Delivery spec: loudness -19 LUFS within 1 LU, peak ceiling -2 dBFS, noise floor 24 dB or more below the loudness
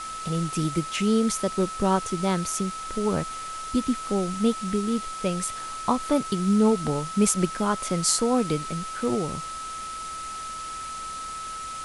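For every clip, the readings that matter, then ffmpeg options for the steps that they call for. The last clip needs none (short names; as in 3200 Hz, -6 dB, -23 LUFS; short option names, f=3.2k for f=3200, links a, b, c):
steady tone 1300 Hz; tone level -33 dBFS; noise floor -35 dBFS; noise floor target -50 dBFS; loudness -26.0 LUFS; peak -6.0 dBFS; loudness target -19.0 LUFS
-> -af "bandreject=f=1.3k:w=30"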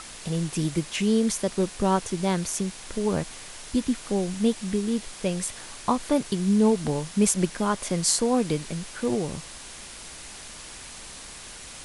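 steady tone none; noise floor -42 dBFS; noise floor target -50 dBFS
-> -af "afftdn=nr=8:nf=-42"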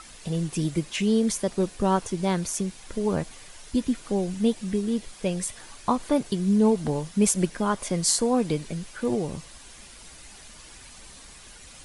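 noise floor -47 dBFS; noise floor target -50 dBFS
-> -af "afftdn=nr=6:nf=-47"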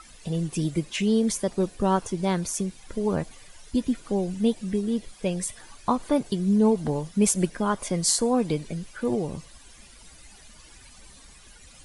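noise floor -50 dBFS; loudness -26.0 LUFS; peak -6.0 dBFS; loudness target -19.0 LUFS
-> -af "volume=7dB,alimiter=limit=-2dB:level=0:latency=1"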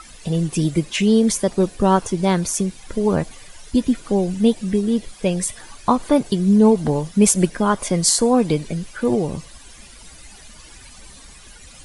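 loudness -19.0 LUFS; peak -2.0 dBFS; noise floor -43 dBFS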